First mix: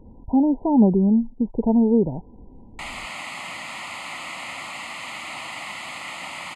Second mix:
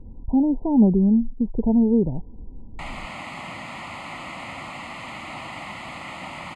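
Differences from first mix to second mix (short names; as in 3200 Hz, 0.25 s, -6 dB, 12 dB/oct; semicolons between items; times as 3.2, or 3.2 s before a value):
speech -6.5 dB; master: add tilt -3 dB/oct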